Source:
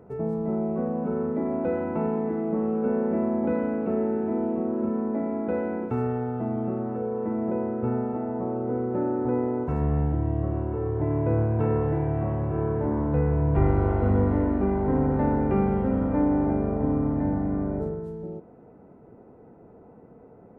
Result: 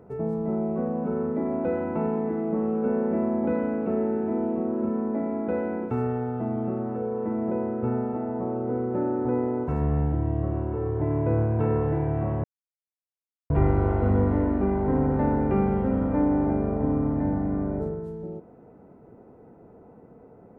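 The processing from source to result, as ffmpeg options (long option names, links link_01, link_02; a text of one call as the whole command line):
ffmpeg -i in.wav -filter_complex "[0:a]asplit=3[link_01][link_02][link_03];[link_01]atrim=end=12.44,asetpts=PTS-STARTPTS,afade=type=out:start_time=12.436:duration=0.004:curve=hsin[link_04];[link_02]atrim=start=12.44:end=13.5,asetpts=PTS-STARTPTS,volume=0[link_05];[link_03]atrim=start=13.5,asetpts=PTS-STARTPTS,afade=type=in:duration=0.004:curve=hsin[link_06];[link_04][link_05][link_06]concat=n=3:v=0:a=1" out.wav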